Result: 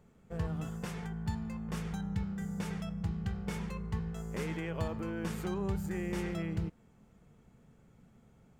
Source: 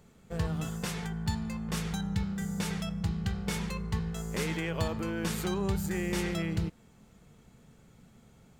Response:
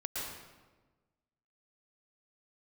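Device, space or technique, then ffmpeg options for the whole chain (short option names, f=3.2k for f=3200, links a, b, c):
behind a face mask: -af "highshelf=f=2.6k:g=-8,equalizer=f=4k:t=o:w=0.48:g=-4,volume=-3.5dB"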